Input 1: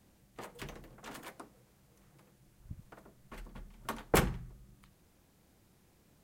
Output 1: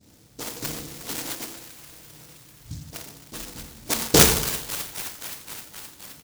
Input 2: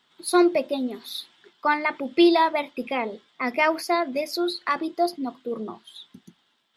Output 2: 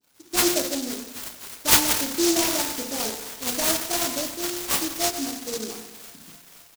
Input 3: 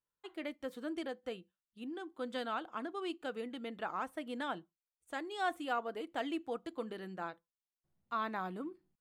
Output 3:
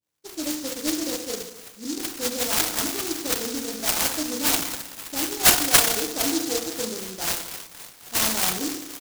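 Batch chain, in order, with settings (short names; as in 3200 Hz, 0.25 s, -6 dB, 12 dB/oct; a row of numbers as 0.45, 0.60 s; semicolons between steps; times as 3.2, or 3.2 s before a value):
HPF 63 Hz; bell 1500 Hz +15 dB 0.3 oct; soft clip -7.5 dBFS; dispersion highs, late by 0.124 s, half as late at 2700 Hz; on a send: thin delay 0.261 s, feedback 76%, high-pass 2700 Hz, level -3.5 dB; on the sum: FDN reverb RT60 0.94 s, low-frequency decay 1.05×, high-frequency decay 0.6×, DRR 1 dB; downsampling 32000 Hz; noise-modulated delay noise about 5500 Hz, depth 0.24 ms; match loudness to -23 LUFS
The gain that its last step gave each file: +9.0, -4.5, +7.5 dB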